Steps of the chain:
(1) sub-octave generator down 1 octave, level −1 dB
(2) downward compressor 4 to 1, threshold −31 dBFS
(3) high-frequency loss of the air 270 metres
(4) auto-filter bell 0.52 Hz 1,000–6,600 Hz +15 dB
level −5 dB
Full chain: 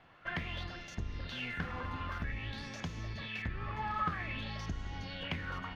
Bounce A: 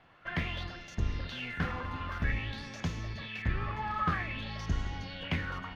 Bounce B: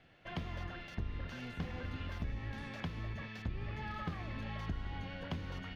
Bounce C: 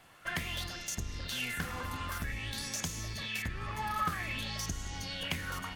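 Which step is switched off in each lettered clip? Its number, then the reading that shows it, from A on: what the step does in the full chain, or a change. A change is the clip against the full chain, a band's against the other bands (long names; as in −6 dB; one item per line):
2, average gain reduction 3.0 dB
4, 1 kHz band −7.0 dB
3, 4 kHz band +6.0 dB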